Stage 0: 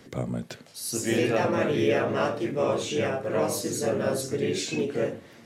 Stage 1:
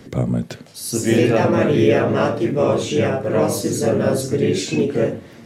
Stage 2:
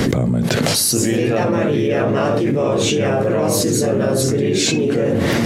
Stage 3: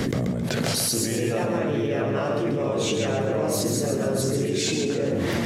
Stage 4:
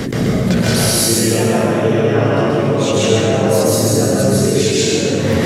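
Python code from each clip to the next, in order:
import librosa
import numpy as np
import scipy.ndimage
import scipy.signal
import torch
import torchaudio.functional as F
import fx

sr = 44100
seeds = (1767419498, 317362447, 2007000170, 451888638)

y1 = fx.low_shelf(x, sr, hz=390.0, db=7.5)
y1 = F.gain(torch.from_numpy(y1), 5.0).numpy()
y2 = fx.env_flatten(y1, sr, amount_pct=100)
y2 = F.gain(torch.from_numpy(y2), -5.5).numpy()
y3 = fx.echo_feedback(y2, sr, ms=135, feedback_pct=39, wet_db=-6)
y3 = F.gain(torch.from_numpy(y3), -8.5).numpy()
y4 = fx.rev_plate(y3, sr, seeds[0], rt60_s=1.2, hf_ratio=1.0, predelay_ms=115, drr_db=-5.0)
y4 = F.gain(torch.from_numpy(y4), 4.0).numpy()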